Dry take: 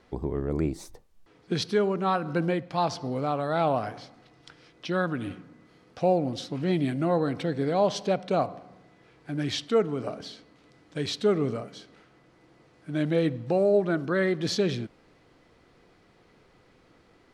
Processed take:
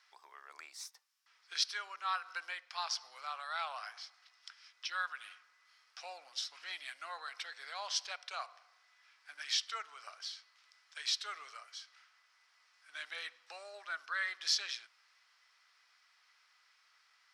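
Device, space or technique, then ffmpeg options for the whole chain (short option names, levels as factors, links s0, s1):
headphones lying on a table: -af "highpass=f=1200:w=0.5412,highpass=f=1200:w=1.3066,equalizer=f=5300:t=o:w=0.35:g=9,volume=0.668"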